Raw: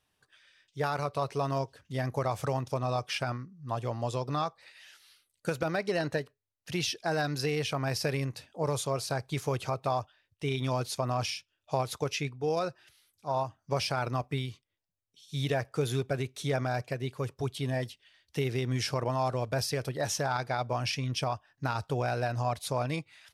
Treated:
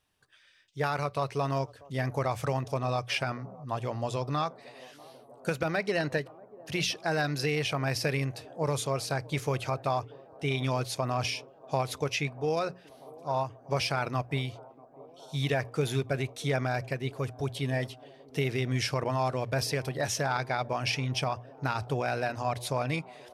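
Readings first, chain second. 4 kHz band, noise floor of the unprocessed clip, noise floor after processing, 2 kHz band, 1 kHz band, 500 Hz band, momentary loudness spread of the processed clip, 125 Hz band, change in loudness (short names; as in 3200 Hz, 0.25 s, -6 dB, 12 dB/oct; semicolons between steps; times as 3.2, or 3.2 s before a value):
+1.5 dB, -81 dBFS, -56 dBFS, +3.5 dB, +1.0 dB, +0.5 dB, 7 LU, +1.0 dB, +1.0 dB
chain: low shelf 170 Hz +3 dB; notches 60/120/180 Hz; on a send: band-limited delay 0.64 s, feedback 83%, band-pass 460 Hz, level -20.5 dB; on the sum: dynamic EQ 2200 Hz, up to +5 dB, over -48 dBFS, Q 1.4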